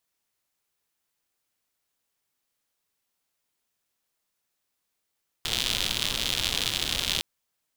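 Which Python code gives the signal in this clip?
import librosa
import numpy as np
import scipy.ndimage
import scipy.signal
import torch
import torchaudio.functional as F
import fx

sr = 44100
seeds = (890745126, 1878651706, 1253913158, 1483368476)

y = fx.rain(sr, seeds[0], length_s=1.76, drops_per_s=120.0, hz=3400.0, bed_db=-7.0)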